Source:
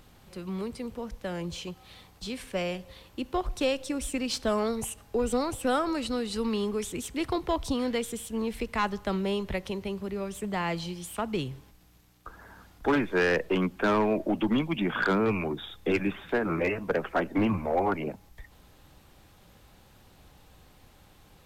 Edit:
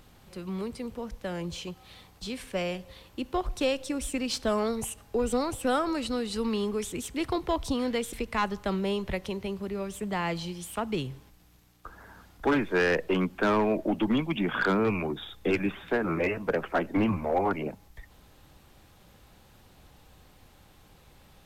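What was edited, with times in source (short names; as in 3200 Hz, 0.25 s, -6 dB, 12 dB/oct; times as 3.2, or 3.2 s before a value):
8.13–8.54 cut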